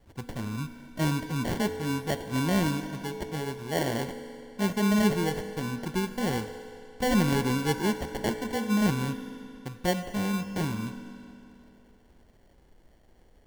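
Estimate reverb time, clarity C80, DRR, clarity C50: 2.7 s, 10.0 dB, 8.0 dB, 9.0 dB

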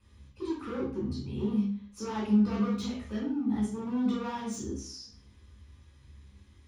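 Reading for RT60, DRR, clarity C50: 0.45 s, -5.0 dB, 3.5 dB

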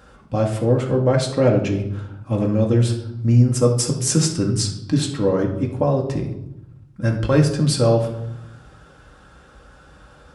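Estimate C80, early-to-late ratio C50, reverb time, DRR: 11.0 dB, 7.5 dB, 0.85 s, 0.0 dB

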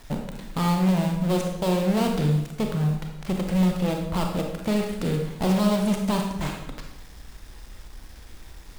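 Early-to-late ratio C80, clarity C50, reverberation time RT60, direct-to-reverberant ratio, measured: 7.0 dB, 4.0 dB, 0.90 s, 2.0 dB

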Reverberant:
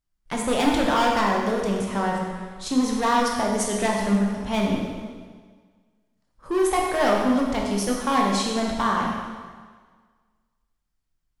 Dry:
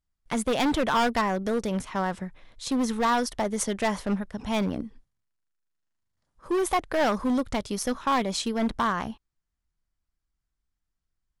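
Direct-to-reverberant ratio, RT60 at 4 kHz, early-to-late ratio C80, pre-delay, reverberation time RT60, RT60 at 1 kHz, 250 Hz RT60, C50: -1.5 dB, 1.5 s, 3.0 dB, 6 ms, 1.6 s, 1.6 s, 1.5 s, 1.0 dB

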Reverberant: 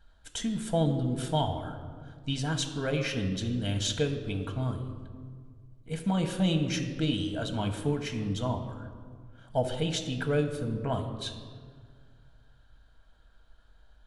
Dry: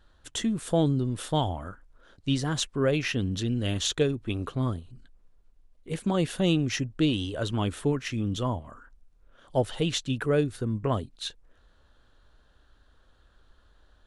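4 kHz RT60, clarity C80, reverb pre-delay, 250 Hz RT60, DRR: 1.1 s, 10.0 dB, 4 ms, 2.4 s, 4.0 dB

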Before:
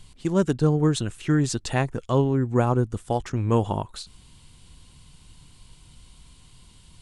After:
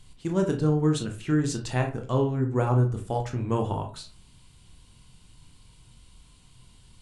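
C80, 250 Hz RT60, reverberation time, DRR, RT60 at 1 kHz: 16.0 dB, 0.50 s, 0.40 s, 3.0 dB, 0.40 s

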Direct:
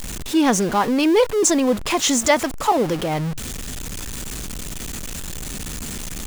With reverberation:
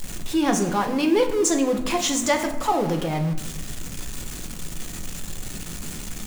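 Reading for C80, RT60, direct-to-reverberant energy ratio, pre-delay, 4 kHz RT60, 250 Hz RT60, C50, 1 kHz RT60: 12.0 dB, 0.90 s, 4.0 dB, 5 ms, 0.55 s, 1.5 s, 9.0 dB, 0.85 s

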